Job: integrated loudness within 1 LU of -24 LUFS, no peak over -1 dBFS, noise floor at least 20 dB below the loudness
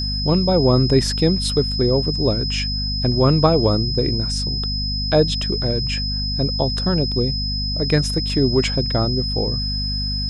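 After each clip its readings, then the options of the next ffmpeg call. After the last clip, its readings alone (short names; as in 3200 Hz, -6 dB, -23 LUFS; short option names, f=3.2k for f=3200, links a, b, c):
hum 50 Hz; harmonics up to 250 Hz; hum level -23 dBFS; steady tone 5100 Hz; tone level -24 dBFS; loudness -19.0 LUFS; peak -2.0 dBFS; loudness target -24.0 LUFS
-> -af "bandreject=f=50:t=h:w=4,bandreject=f=100:t=h:w=4,bandreject=f=150:t=h:w=4,bandreject=f=200:t=h:w=4,bandreject=f=250:t=h:w=4"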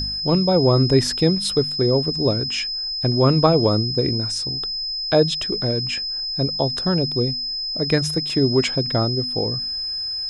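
hum none; steady tone 5100 Hz; tone level -24 dBFS
-> -af "bandreject=f=5.1k:w=30"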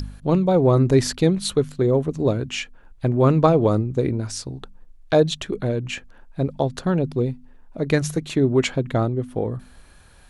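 steady tone none; loudness -21.5 LUFS; peak -2.0 dBFS; loudness target -24.0 LUFS
-> -af "volume=-2.5dB"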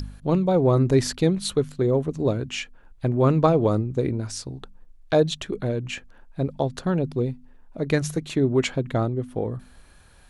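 loudness -24.0 LUFS; peak -4.5 dBFS; noise floor -51 dBFS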